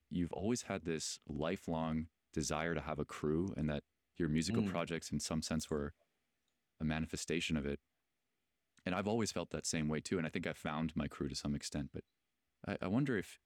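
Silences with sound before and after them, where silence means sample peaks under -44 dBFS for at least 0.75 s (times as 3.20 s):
5.89–6.81 s
7.75–8.86 s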